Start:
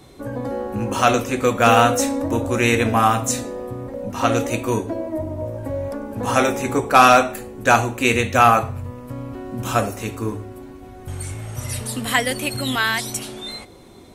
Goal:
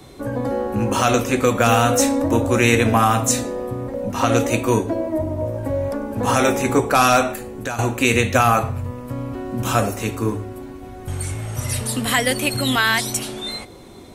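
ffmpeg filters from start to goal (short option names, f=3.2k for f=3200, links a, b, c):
-filter_complex "[0:a]acrossover=split=190|4700[a][b][c];[b]alimiter=limit=-9.5dB:level=0:latency=1:release=105[d];[a][d][c]amix=inputs=3:normalize=0,asettb=1/sr,asplit=3[e][f][g];[e]atrim=end=7.324[h];[f]atrim=start=7.32:end=7.79,asetpts=PTS-STARTPTS,afade=t=in:d=0.004:c=qsin,afade=t=out:st=0.466:d=0.004:c=qsin,acompressor=threshold=-31dB:ratio=3[i];[g]atrim=start=7.786[j];[h][i]acrossfade=d=0.004:c1=hsin:c2=qsin[k];[k][j]acrossfade=d=0.004:c1=qsin:c2=hsin,volume=3.5dB"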